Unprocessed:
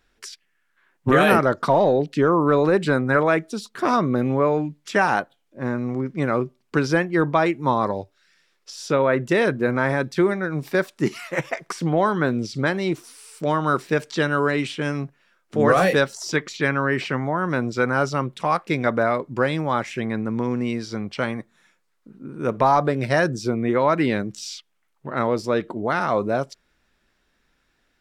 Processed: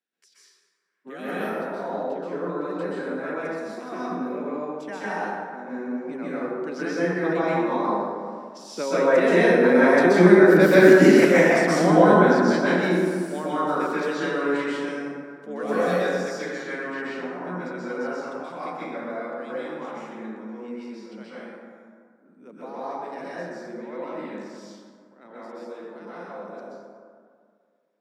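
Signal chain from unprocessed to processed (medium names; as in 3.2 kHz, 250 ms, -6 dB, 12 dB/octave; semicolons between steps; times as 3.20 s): Doppler pass-by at 10.85 s, 5 m/s, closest 3.3 m; steep high-pass 170 Hz 72 dB/octave; peaking EQ 1.2 kHz -4.5 dB 0.67 oct; plate-style reverb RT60 2.1 s, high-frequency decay 0.4×, pre-delay 115 ms, DRR -10 dB; trim +1.5 dB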